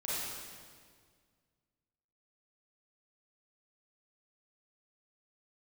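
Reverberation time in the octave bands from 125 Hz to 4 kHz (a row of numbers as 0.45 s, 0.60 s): 2.4 s, 2.2 s, 2.0 s, 1.7 s, 1.6 s, 1.6 s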